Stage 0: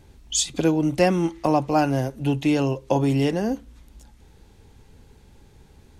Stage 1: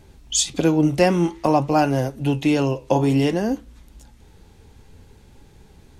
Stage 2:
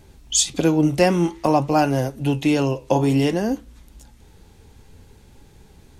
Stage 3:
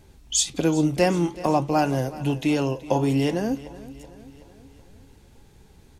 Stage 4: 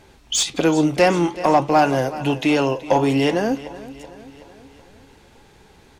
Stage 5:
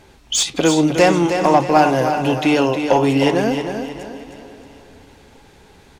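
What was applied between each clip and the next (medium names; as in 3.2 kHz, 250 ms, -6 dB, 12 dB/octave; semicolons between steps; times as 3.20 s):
flange 0.53 Hz, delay 4.5 ms, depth 9.9 ms, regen +75%; trim +7 dB
treble shelf 6.8 kHz +4 dB
feedback delay 376 ms, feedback 54%, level -18 dB; trim -3.5 dB
overdrive pedal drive 14 dB, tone 2.8 kHz, clips at -6 dBFS; trim +2.5 dB
feedback delay 312 ms, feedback 38%, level -7.5 dB; trim +2 dB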